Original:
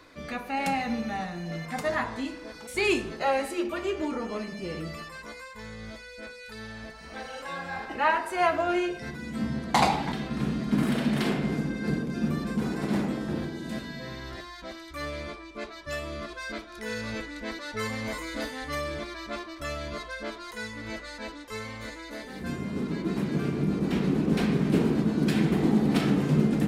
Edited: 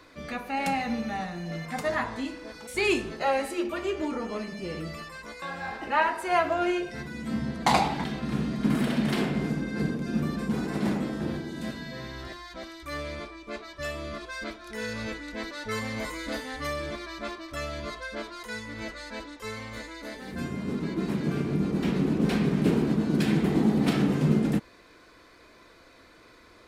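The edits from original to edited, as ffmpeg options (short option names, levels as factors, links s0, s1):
-filter_complex "[0:a]asplit=2[s0][s1];[s0]atrim=end=5.422[s2];[s1]atrim=start=7.498[s3];[s2][s3]acrossfade=d=0.004:c1=hsin:c2=hsin"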